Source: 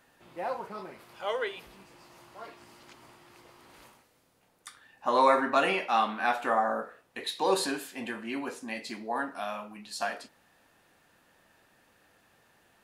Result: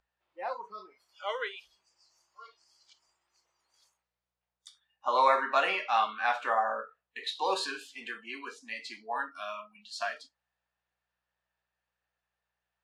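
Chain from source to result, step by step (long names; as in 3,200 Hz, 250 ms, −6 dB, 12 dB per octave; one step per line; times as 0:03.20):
hum with harmonics 60 Hz, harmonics 3, −56 dBFS −5 dB per octave
noise reduction from a noise print of the clip's start 22 dB
three-way crossover with the lows and the highs turned down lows −18 dB, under 500 Hz, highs −21 dB, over 7,100 Hz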